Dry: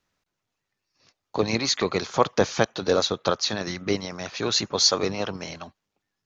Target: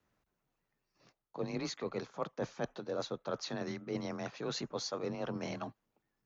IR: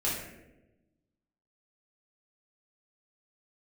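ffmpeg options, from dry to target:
-af "equalizer=f=5.1k:t=o:w=2.7:g=-11,areverse,acompressor=threshold=-36dB:ratio=6,areverse,afreqshift=27,volume=1dB"

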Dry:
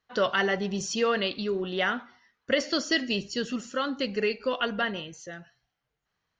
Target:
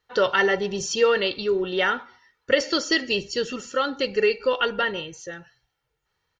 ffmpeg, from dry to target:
-af "aecho=1:1:2.2:0.57,volume=3.5dB"

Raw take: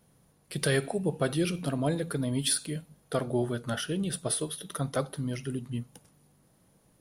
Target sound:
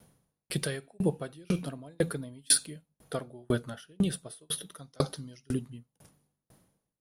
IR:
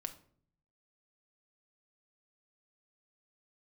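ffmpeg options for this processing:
-filter_complex "[0:a]asettb=1/sr,asplit=3[a][b][c];[a]atrim=end=4.784[d];[b]atrim=start=4.78:end=5.54,asetpts=PTS-STARTPTS,afade=t=in:d=0.004:c=qsin,afade=t=out:st=0.756:d=0.004:c=qsin,equalizer=f=5.3k:t=o:w=1:g=13.5[e];[c]atrim=start=5.536[f];[d][e]acrossfade=d=0.004:c1=hsin:c2=qsin[g];[g][f]acrossfade=d=0.004:c1=qsin:c2=hsin,aeval=exprs='val(0)*pow(10,-38*if(lt(mod(2*n/s,1),2*abs(2)/1000),1-mod(2*n/s,1)/(2*abs(2)/1000),(mod(2*n/s,1)-2*abs(2)/1000)/(1-2*abs(2)/1000))/20)':c=same,volume=7.5dB"

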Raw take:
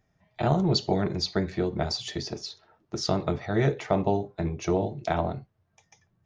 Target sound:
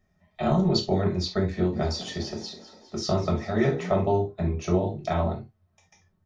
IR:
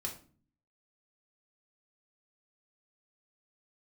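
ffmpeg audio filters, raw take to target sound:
-filter_complex "[0:a]asplit=3[a][b][c];[a]afade=t=out:st=1.72:d=0.02[d];[b]asplit=7[e][f][g][h][i][j][k];[f]adelay=201,afreqshift=44,volume=-15dB[l];[g]adelay=402,afreqshift=88,volume=-19.7dB[m];[h]adelay=603,afreqshift=132,volume=-24.5dB[n];[i]adelay=804,afreqshift=176,volume=-29.2dB[o];[j]adelay=1005,afreqshift=220,volume=-33.9dB[p];[k]adelay=1206,afreqshift=264,volume=-38.7dB[q];[e][l][m][n][o][p][q]amix=inputs=7:normalize=0,afade=t=in:st=1.72:d=0.02,afade=t=out:st=3.99:d=0.02[r];[c]afade=t=in:st=3.99:d=0.02[s];[d][r][s]amix=inputs=3:normalize=0[t];[1:a]atrim=start_sample=2205,atrim=end_sample=3528[u];[t][u]afir=irnorm=-1:irlink=0"

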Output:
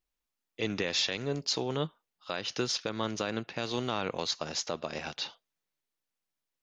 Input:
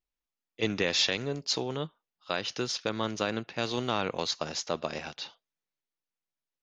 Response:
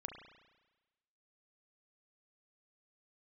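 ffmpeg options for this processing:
-af "alimiter=limit=-21.5dB:level=0:latency=1:release=335,volume=3.5dB"

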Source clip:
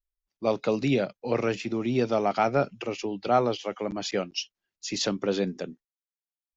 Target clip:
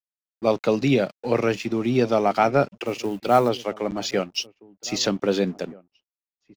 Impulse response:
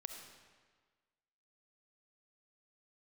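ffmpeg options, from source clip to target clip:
-filter_complex "[0:a]asettb=1/sr,asplit=3[a][b][c];[a]atrim=end=2.844[d];[b]atrim=start=2.84:end=3.49,asetpts=PTS-STARTPTS,afade=t=in:d=0.004:c=qsin,afade=t=out:st=0.646:d=0.004:c=qsin,acrusher=bits=7:mode=log:mix=0:aa=0.000001[e];[c]atrim=start=3.486[f];[d][e]acrossfade=d=0.004:c1=hsin:c2=qsin[g];[g][f]acrossfade=d=0.004:c1=qsin:c2=hsin,aeval=exprs='sgn(val(0))*max(abs(val(0))-0.00299,0)':c=same,asplit=2[h][i];[i]adelay=1574,volume=-22dB,highshelf=f=4k:g=-35.4[j];[h][j]amix=inputs=2:normalize=0,volume=5dB"

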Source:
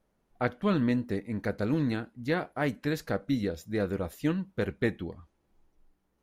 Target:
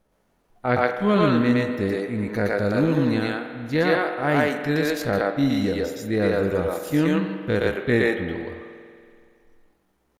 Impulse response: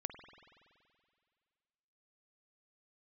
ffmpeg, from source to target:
-filter_complex "[0:a]atempo=0.61,asplit=2[a][b];[b]highpass=390[c];[1:a]atrim=start_sample=2205,adelay=117[d];[c][d]afir=irnorm=-1:irlink=0,volume=4.5dB[e];[a][e]amix=inputs=2:normalize=0,volume=6dB"

